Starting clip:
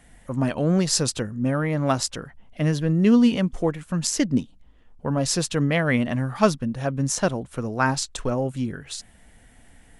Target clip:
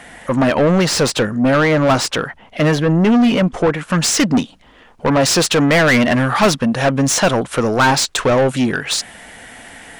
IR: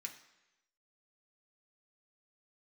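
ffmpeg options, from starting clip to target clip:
-filter_complex "[0:a]asetnsamples=nb_out_samples=441:pad=0,asendcmd='2.75 lowpass f 1400;3.9 lowpass f 4400',asplit=2[link_01][link_02];[link_02]highpass=frequency=720:poles=1,volume=29dB,asoftclip=type=tanh:threshold=-4.5dB[link_03];[link_01][link_03]amix=inputs=2:normalize=0,lowpass=frequency=2500:poles=1,volume=-6dB"

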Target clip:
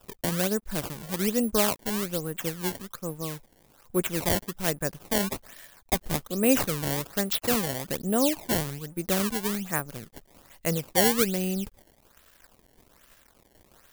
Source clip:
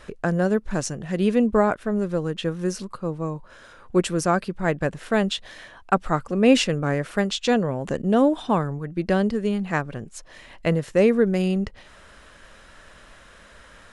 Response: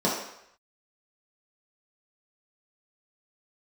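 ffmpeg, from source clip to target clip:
-af "acrusher=samples=20:mix=1:aa=0.000001:lfo=1:lforange=32:lforate=1.2,aeval=exprs='sgn(val(0))*max(abs(val(0))-0.00316,0)':channel_layout=same,aemphasis=mode=production:type=50kf,volume=-6.5dB"

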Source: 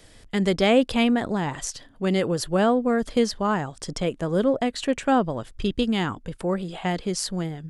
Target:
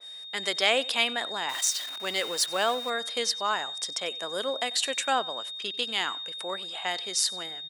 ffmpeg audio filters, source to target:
ffmpeg -i in.wav -filter_complex "[0:a]asettb=1/sr,asplit=3[link_01][link_02][link_03];[link_01]atrim=end=1.494[link_04];[link_02]atrim=start=1.49:end=2.9,asetpts=PTS-STARTPTS,afade=type=in:duration=0.004:curve=qsin,afade=type=out:start_time=1.406:duration=0.004:curve=qsin,aeval=exprs='val(0)+0.5*0.0178*sgn(val(0))':channel_layout=same[link_05];[link_03]atrim=start=2.896[link_06];[link_04][link_05]acrossfade=duration=0.004:curve1=hsin:curve2=qsin[link_07];[link_07][link_06]acrossfade=duration=0.004:curve1=qsin:curve2=hsin,asettb=1/sr,asplit=3[link_08][link_09][link_10];[link_08]atrim=end=4.274[link_11];[link_09]atrim=start=4.27:end=5.14,asetpts=PTS-STARTPTS,afade=type=in:duration=0.004:curve=qsin,afade=type=out:start_time=0.866:duration=0.004:curve=qsin,highshelf=frequency=9300:gain=10.5[link_12];[link_10]atrim=start=5.136[link_13];[link_11][link_12]acrossfade=duration=0.004:curve1=hsin:curve2=qsin[link_14];[link_14][link_13]acrossfade=duration=0.004:curve1=qsin:curve2=hsin,asplit=2[link_15][link_16];[link_16]aecho=0:1:93|186:0.0794|0.023[link_17];[link_15][link_17]amix=inputs=2:normalize=0,aeval=exprs='val(0)+0.0126*sin(2*PI*3700*n/s)':channel_layout=same,highpass=750,adynamicequalizer=threshold=0.0126:dfrequency=2100:dqfactor=0.7:tfrequency=2100:tqfactor=0.7:attack=5:release=100:ratio=0.375:range=3:mode=boostabove:tftype=highshelf,volume=-1.5dB" out.wav

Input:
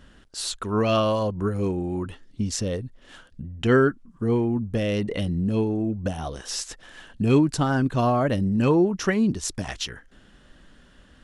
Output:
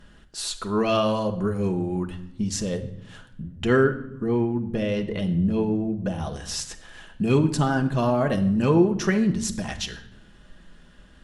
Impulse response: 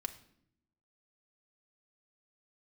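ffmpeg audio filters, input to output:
-filter_complex "[0:a]asettb=1/sr,asplit=3[link_01][link_02][link_03];[link_01]atrim=end=3.834[link_04];[link_02]atrim=start=3.83:end=6.2,asetpts=PTS-STARTPTS,afade=type=in:duration=0.004:curve=qsin,afade=type=out:start_time=2.366:duration=0.004:curve=qsin,lowpass=frequency=3500:poles=1[link_05];[link_03]atrim=start=6.196[link_06];[link_04][link_05]acrossfade=duration=0.004:curve1=hsin:curve2=qsin[link_07];[link_07][link_06]acrossfade=duration=0.004:curve1=qsin:curve2=hsin[link_08];[1:a]atrim=start_sample=2205,asetrate=36162,aresample=44100[link_09];[link_08][link_09]afir=irnorm=-1:irlink=0"

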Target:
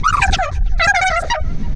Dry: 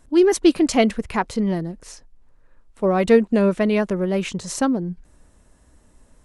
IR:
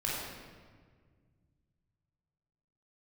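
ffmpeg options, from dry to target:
-filter_complex "[1:a]atrim=start_sample=2205,atrim=end_sample=3087[link_01];[0:a][link_01]afir=irnorm=-1:irlink=0,acrossover=split=390|1400[link_02][link_03][link_04];[link_02]alimiter=limit=-16dB:level=0:latency=1[link_05];[link_05][link_03][link_04]amix=inputs=3:normalize=0,acompressor=mode=upward:threshold=-22dB:ratio=2.5,asetrate=156555,aresample=44100,lowpass=frequency=5900:width=0.5412,lowpass=frequency=5900:width=1.3066,bass=frequency=250:gain=15,treble=frequency=4000:gain=4,asplit=2[link_06][link_07];[link_07]adelay=330,highpass=300,lowpass=3400,asoftclip=type=hard:threshold=-11.5dB,volume=-26dB[link_08];[link_06][link_08]amix=inputs=2:normalize=0,volume=2dB"

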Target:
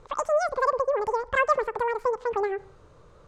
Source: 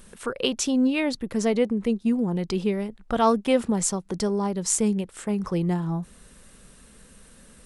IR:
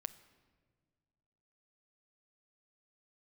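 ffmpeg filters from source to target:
-filter_complex "[0:a]asetrate=103194,aresample=44100,lowpass=frequency=7700:width=0.5412,lowpass=frequency=7700:width=1.3066,highshelf=frequency=2200:width_type=q:width=1.5:gain=-8.5,asplit=2[link_01][link_02];[1:a]atrim=start_sample=2205,afade=type=out:start_time=0.25:duration=0.01,atrim=end_sample=11466[link_03];[link_02][link_03]afir=irnorm=-1:irlink=0,volume=2.5dB[link_04];[link_01][link_04]amix=inputs=2:normalize=0,volume=-7.5dB"

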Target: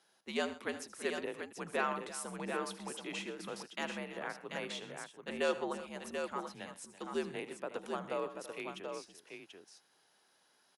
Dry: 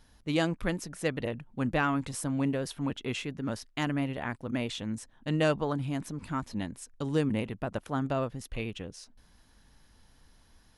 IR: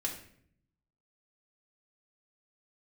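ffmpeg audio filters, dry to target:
-af "highpass=frequency=380:width=0.5412,highpass=frequency=380:width=1.3066,afreqshift=-80,aecho=1:1:78|126|333|736:0.178|0.126|0.168|0.501,volume=-5dB"

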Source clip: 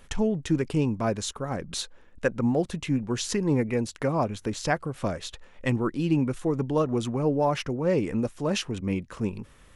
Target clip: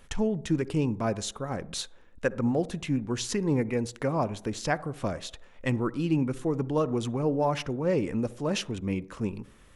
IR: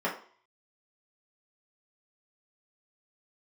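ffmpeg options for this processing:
-filter_complex "[0:a]asplit=2[link_01][link_02];[1:a]atrim=start_sample=2205,asetrate=30429,aresample=44100,adelay=54[link_03];[link_02][link_03]afir=irnorm=-1:irlink=0,volume=-31dB[link_04];[link_01][link_04]amix=inputs=2:normalize=0,volume=-2dB"

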